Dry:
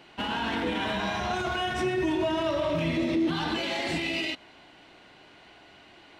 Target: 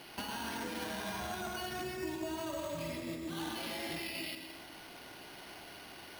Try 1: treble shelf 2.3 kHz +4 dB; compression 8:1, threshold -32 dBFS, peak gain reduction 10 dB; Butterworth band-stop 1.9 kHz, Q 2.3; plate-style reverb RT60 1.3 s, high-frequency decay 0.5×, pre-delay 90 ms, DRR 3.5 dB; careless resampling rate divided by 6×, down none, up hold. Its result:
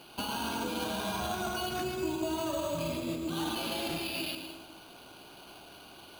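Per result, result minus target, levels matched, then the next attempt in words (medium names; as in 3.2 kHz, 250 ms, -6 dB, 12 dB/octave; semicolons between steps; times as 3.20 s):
compression: peak gain reduction -6 dB; 2 kHz band -4.5 dB
treble shelf 2.3 kHz +4 dB; compression 8:1, threshold -39 dBFS, peak gain reduction 16.5 dB; Butterworth band-stop 1.9 kHz, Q 2.3; plate-style reverb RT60 1.3 s, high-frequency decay 0.5×, pre-delay 90 ms, DRR 3.5 dB; careless resampling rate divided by 6×, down none, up hold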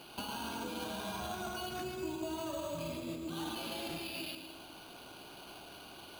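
2 kHz band -3.0 dB
treble shelf 2.3 kHz +4 dB; compression 8:1, threshold -39 dBFS, peak gain reduction 16.5 dB; Butterworth band-stop 6.3 kHz, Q 2.3; plate-style reverb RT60 1.3 s, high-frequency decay 0.5×, pre-delay 90 ms, DRR 3.5 dB; careless resampling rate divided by 6×, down none, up hold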